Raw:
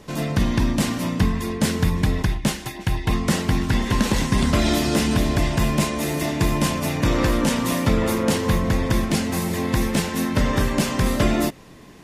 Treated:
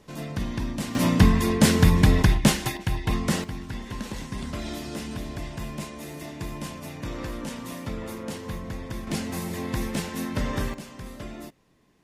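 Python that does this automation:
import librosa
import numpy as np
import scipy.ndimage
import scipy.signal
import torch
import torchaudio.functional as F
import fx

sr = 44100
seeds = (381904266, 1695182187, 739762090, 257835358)

y = fx.gain(x, sr, db=fx.steps((0.0, -9.5), (0.95, 3.0), (2.77, -4.0), (3.44, -14.0), (9.07, -7.5), (10.74, -19.0)))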